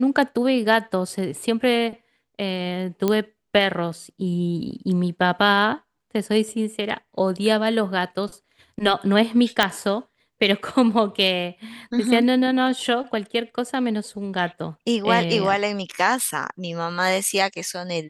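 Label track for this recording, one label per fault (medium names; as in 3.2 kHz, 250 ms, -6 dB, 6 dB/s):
3.080000	3.080000	pop -8 dBFS
9.630000	9.630000	pop -3 dBFS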